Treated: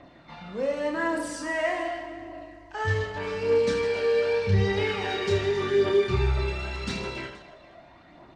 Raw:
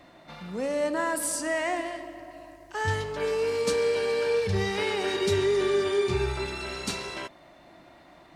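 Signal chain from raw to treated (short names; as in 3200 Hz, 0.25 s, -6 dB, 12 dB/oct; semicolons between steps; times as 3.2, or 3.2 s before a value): air absorption 110 m; phaser 0.85 Hz, delay 1.9 ms, feedback 46%; reverse bouncing-ball echo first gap 30 ms, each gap 1.6×, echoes 5; gain -1.5 dB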